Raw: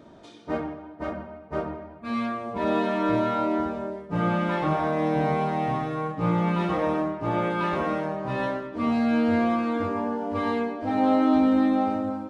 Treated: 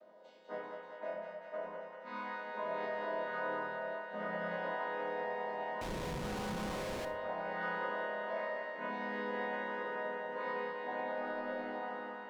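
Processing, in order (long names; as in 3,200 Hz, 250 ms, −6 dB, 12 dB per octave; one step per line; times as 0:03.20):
channel vocoder with a chord as carrier minor triad, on G#3
low shelf with overshoot 400 Hz −10.5 dB, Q 3
brickwall limiter −22.5 dBFS, peak gain reduction 8 dB
resonators tuned to a chord F2 major, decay 0.61 s
on a send: feedback echo with a high-pass in the loop 195 ms, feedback 85%, high-pass 660 Hz, level −3.5 dB
0:05.81–0:07.05: on the sum: comparator with hysteresis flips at −53.5 dBFS
rectangular room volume 1,900 cubic metres, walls furnished, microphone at 1 metre
slew-rate limiting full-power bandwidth 14 Hz
level +13 dB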